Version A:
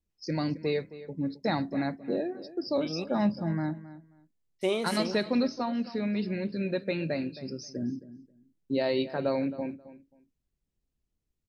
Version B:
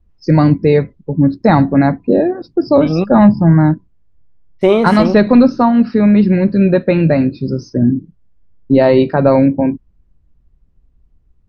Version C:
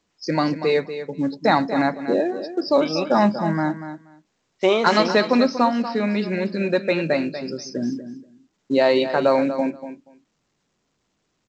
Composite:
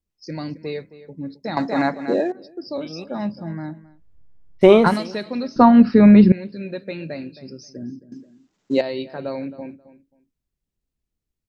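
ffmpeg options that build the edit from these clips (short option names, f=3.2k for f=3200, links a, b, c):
-filter_complex "[2:a]asplit=2[a][b];[1:a]asplit=2[c][d];[0:a]asplit=5[e][f][g][h][i];[e]atrim=end=1.572[j];[a]atrim=start=1.568:end=2.322[k];[f]atrim=start=2.318:end=4.04[l];[c]atrim=start=3.8:end=5[m];[g]atrim=start=4.76:end=5.562[n];[d]atrim=start=5.558:end=6.322[o];[h]atrim=start=6.318:end=8.122[p];[b]atrim=start=8.118:end=8.812[q];[i]atrim=start=8.808[r];[j][k]acrossfade=d=0.004:c1=hsin:c2=hsin[s];[s][l]acrossfade=d=0.004:c1=hsin:c2=hsin[t];[t][m]acrossfade=d=0.24:c1=tri:c2=tri[u];[u][n]acrossfade=d=0.24:c1=tri:c2=tri[v];[v][o]acrossfade=d=0.004:c1=hsin:c2=hsin[w];[w][p]acrossfade=d=0.004:c1=hsin:c2=hsin[x];[x][q]acrossfade=d=0.004:c1=hsin:c2=hsin[y];[y][r]acrossfade=d=0.004:c1=hsin:c2=hsin"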